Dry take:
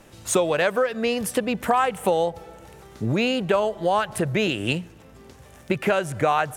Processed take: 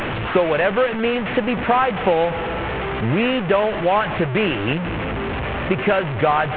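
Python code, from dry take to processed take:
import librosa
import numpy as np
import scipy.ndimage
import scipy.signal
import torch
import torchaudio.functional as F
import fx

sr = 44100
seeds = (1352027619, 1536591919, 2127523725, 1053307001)

y = fx.delta_mod(x, sr, bps=16000, step_db=-21.5)
y = y * 10.0 ** (3.5 / 20.0)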